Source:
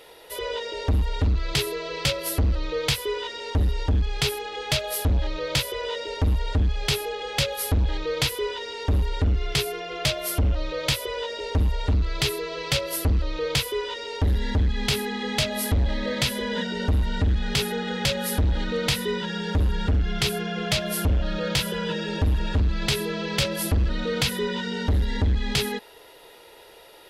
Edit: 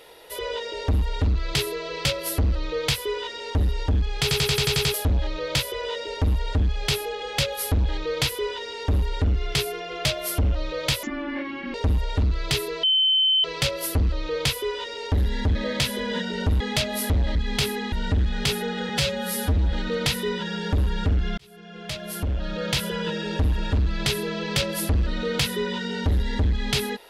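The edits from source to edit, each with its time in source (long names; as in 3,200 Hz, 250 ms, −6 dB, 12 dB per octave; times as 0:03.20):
0:04.22: stutter in place 0.09 s, 8 plays
0:11.03–0:11.45: play speed 59%
0:12.54: insert tone 3,070 Hz −16.5 dBFS 0.61 s
0:14.65–0:15.22: swap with 0:15.97–0:17.02
0:17.99–0:18.54: time-stretch 1.5×
0:20.20–0:21.66: fade in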